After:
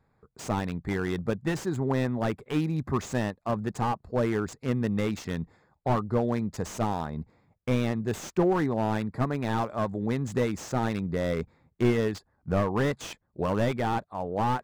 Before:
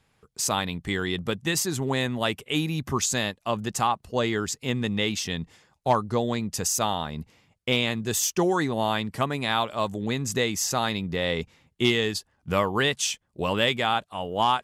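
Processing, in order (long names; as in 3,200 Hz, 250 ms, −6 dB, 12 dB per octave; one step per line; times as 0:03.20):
adaptive Wiener filter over 15 samples
slew-rate limiting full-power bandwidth 56 Hz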